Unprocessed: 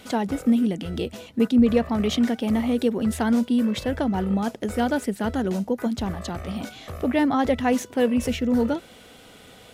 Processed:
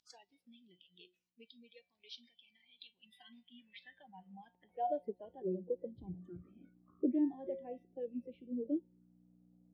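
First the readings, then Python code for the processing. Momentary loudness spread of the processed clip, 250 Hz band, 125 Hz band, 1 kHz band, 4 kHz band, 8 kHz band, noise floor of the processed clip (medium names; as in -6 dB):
22 LU, -20.5 dB, -24.0 dB, -17.5 dB, -22.0 dB, under -30 dB, -82 dBFS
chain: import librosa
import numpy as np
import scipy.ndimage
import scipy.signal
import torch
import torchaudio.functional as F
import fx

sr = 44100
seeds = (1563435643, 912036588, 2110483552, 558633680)

y = fx.env_phaser(x, sr, low_hz=290.0, high_hz=1300.0, full_db=-24.5)
y = fx.add_hum(y, sr, base_hz=60, snr_db=12)
y = fx.high_shelf(y, sr, hz=8100.0, db=-6.0)
y = fx.comb_fb(y, sr, f0_hz=180.0, decay_s=0.74, harmonics='all', damping=0.0, mix_pct=80)
y = fx.spec_box(y, sr, start_s=2.35, length_s=2.39, low_hz=320.0, high_hz=680.0, gain_db=-8)
y = fx.rider(y, sr, range_db=3, speed_s=2.0)
y = fx.hpss(y, sr, part='harmonic', gain_db=-6)
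y = fx.tilt_shelf(y, sr, db=5.0, hz=1100.0)
y = fx.noise_reduce_blind(y, sr, reduce_db=20)
y = fx.filter_sweep_bandpass(y, sr, from_hz=5100.0, to_hz=310.0, start_s=2.55, end_s=5.9, q=2.8)
y = F.gain(torch.from_numpy(y), 7.5).numpy()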